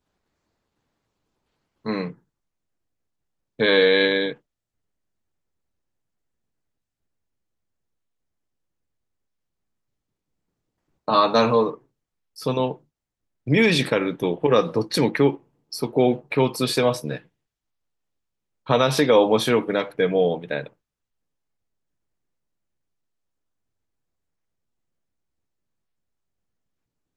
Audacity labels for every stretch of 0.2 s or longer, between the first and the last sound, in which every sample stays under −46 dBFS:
2.140000	3.590000	silence
4.370000	11.080000	silence
11.780000	12.360000	silence
12.780000	13.470000	silence
15.390000	15.720000	silence
17.220000	18.660000	silence